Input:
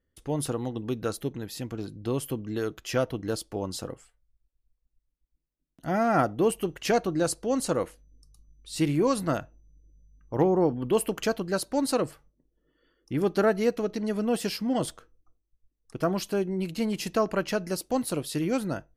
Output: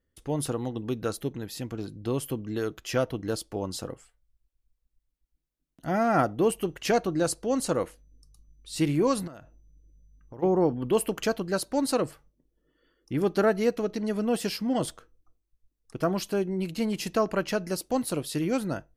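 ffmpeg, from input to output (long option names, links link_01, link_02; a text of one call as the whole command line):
ffmpeg -i in.wav -filter_complex "[0:a]asplit=3[link_01][link_02][link_03];[link_01]afade=type=out:start_time=9.26:duration=0.02[link_04];[link_02]acompressor=threshold=-40dB:ratio=8:attack=3.2:release=140:knee=1:detection=peak,afade=type=in:start_time=9.26:duration=0.02,afade=type=out:start_time=10.42:duration=0.02[link_05];[link_03]afade=type=in:start_time=10.42:duration=0.02[link_06];[link_04][link_05][link_06]amix=inputs=3:normalize=0" out.wav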